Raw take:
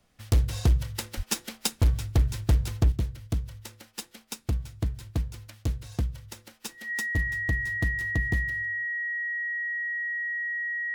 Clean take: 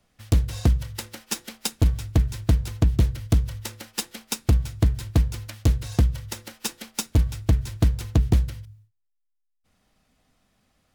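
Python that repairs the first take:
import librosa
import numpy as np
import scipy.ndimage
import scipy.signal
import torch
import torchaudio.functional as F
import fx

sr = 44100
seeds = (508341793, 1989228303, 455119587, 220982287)

y = fx.fix_declip(x, sr, threshold_db=-15.0)
y = fx.notch(y, sr, hz=1900.0, q=30.0)
y = fx.fix_deplosive(y, sr, at_s=(1.16,))
y = fx.gain(y, sr, db=fx.steps((0.0, 0.0), (2.92, 9.0)))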